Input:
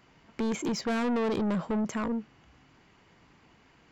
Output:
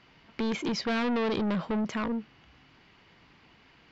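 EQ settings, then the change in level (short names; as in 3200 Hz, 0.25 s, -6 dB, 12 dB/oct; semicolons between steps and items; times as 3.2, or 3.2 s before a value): air absorption 320 m; high shelf 2700 Hz +11.5 dB; bell 5400 Hz +8.5 dB 1.9 oct; 0.0 dB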